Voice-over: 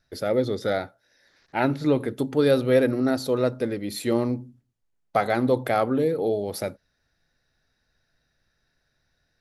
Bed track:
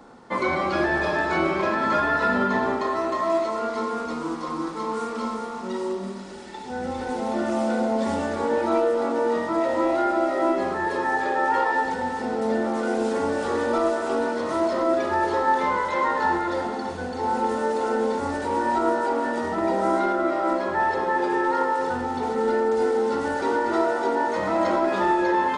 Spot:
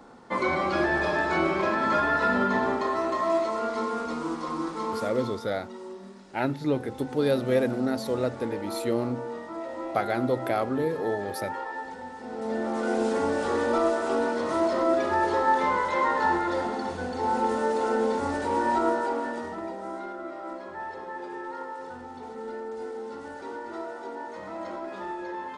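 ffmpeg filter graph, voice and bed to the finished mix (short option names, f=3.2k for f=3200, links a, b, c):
-filter_complex "[0:a]adelay=4800,volume=-4.5dB[a];[1:a]volume=9dB,afade=t=out:st=4.86:d=0.61:silence=0.298538,afade=t=in:st=12.21:d=0.75:silence=0.281838,afade=t=out:st=18.75:d=1.01:silence=0.237137[b];[a][b]amix=inputs=2:normalize=0"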